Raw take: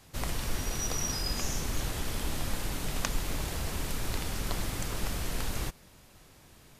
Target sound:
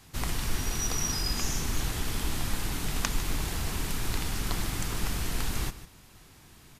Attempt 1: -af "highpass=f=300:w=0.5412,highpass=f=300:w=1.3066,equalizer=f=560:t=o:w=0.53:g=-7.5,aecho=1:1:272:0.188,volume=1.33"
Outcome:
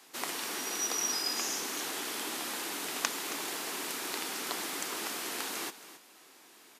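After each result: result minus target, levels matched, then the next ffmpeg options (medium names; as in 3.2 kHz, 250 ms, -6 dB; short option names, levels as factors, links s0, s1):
echo 121 ms late; 250 Hz band -5.0 dB
-af "highpass=f=300:w=0.5412,highpass=f=300:w=1.3066,equalizer=f=560:t=o:w=0.53:g=-7.5,aecho=1:1:151:0.188,volume=1.33"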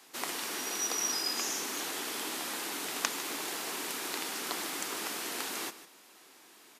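250 Hz band -4.5 dB
-af "equalizer=f=560:t=o:w=0.53:g=-7.5,aecho=1:1:151:0.188,volume=1.33"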